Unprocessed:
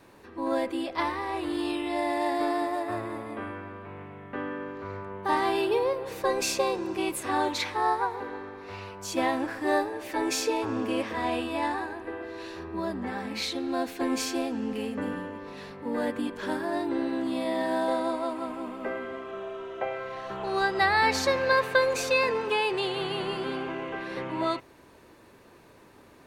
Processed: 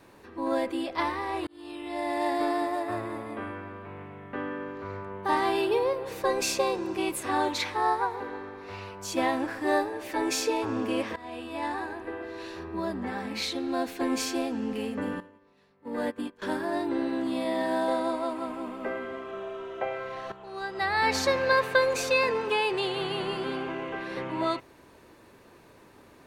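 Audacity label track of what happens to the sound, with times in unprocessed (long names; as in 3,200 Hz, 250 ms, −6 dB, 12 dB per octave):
1.470000	2.250000	fade in
11.160000	11.910000	fade in linear, from −18.5 dB
15.200000	16.420000	expander for the loud parts 2.5 to 1, over −42 dBFS
20.320000	21.150000	fade in quadratic, from −12.5 dB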